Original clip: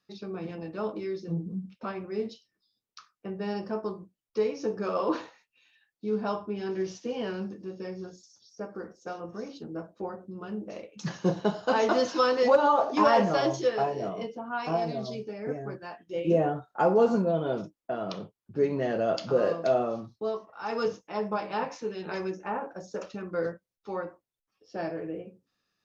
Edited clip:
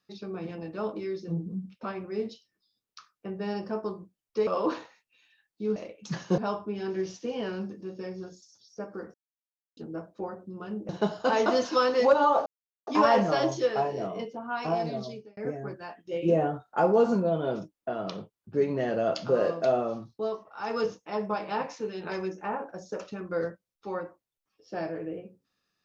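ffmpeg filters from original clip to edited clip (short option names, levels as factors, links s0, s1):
-filter_complex "[0:a]asplit=9[s0][s1][s2][s3][s4][s5][s6][s7][s8];[s0]atrim=end=4.472[s9];[s1]atrim=start=4.898:end=6.192[s10];[s2]atrim=start=10.698:end=11.322[s11];[s3]atrim=start=6.188:end=8.95,asetpts=PTS-STARTPTS,afade=t=out:st=2.758:d=0.004:c=hsin[s12];[s4]atrim=start=8.95:end=9.58,asetpts=PTS-STARTPTS,volume=0[s13];[s5]atrim=start=9.58:end=10.702,asetpts=PTS-STARTPTS,afade=t=in:d=0.004:c=hsin[s14];[s6]atrim=start=11.318:end=12.89,asetpts=PTS-STARTPTS,afade=t=out:st=1.568:d=0.004:c=hsin,apad=pad_dur=0.41[s15];[s7]atrim=start=12.89:end=15.39,asetpts=PTS-STARTPTS,afade=t=in:d=0.004:c=hsin,afade=t=out:st=2.12:d=0.38[s16];[s8]atrim=start=15.39,asetpts=PTS-STARTPTS,afade=t=in:d=0.004:c=hsin[s17];[s9][s10]acrossfade=d=0.004:c1=hsin:c2=hsin[s18];[s18][s11]acrossfade=d=0.004:c1=hsin:c2=hsin[s19];[s12][s13][s14]concat=n=3:v=0:a=1[s20];[s19][s20]acrossfade=d=0.004:c1=hsin:c2=hsin[s21];[s15][s16][s17]concat=n=3:v=0:a=1[s22];[s21][s22]acrossfade=d=0.004:c1=hsin:c2=hsin"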